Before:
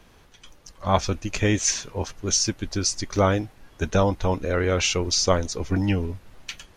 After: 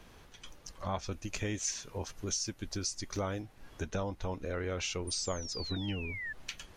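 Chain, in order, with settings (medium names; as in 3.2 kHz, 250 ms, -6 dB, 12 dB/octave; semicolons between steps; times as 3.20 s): 1.11–3.42 s: treble shelf 7.6 kHz +7.5 dB; 5.07–6.33 s: painted sound fall 1.7–9.5 kHz -32 dBFS; compression 2.5:1, threshold -37 dBFS, peak gain reduction 15 dB; trim -2 dB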